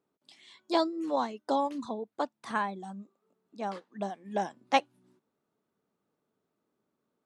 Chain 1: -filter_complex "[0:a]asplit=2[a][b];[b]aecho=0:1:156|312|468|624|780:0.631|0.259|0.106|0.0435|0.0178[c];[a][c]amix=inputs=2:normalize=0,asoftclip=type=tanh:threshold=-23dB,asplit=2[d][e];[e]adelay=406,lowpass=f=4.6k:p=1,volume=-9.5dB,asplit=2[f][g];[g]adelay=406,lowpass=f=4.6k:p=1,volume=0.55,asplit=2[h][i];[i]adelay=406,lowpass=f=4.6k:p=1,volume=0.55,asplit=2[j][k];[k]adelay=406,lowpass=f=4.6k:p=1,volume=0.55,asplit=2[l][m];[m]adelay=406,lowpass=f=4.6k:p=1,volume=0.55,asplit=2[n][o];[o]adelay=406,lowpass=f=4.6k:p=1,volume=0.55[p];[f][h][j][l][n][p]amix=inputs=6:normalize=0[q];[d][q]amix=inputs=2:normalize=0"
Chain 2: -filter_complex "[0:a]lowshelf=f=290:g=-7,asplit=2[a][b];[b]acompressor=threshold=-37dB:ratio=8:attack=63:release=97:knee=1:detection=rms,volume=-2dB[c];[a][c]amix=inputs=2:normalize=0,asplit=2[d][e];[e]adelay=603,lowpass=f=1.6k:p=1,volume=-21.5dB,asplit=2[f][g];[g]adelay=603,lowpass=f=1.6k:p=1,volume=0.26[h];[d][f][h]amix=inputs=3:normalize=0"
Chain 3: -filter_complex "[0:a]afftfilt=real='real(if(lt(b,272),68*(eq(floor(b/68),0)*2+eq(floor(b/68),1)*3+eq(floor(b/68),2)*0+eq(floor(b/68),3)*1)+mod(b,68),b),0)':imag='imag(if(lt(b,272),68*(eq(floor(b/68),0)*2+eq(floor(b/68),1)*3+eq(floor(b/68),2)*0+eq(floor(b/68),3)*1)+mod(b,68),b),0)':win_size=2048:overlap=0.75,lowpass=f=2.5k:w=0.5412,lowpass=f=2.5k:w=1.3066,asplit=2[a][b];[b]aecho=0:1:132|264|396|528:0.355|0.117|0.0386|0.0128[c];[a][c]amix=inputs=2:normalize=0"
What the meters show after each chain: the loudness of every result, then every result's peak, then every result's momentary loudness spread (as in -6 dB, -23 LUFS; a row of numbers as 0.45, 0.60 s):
-33.5, -31.5, -41.0 LUFS; -21.0, -7.0, -19.5 dBFS; 16, 21, 20 LU